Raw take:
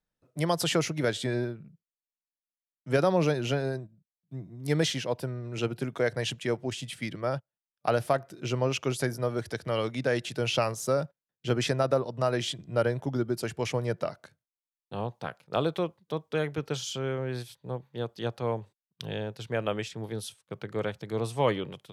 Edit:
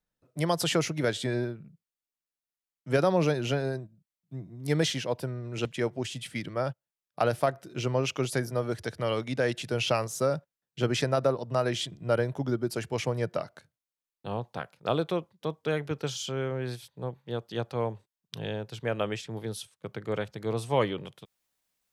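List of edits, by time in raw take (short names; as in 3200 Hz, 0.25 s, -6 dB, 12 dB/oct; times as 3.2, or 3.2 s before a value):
5.65–6.32 cut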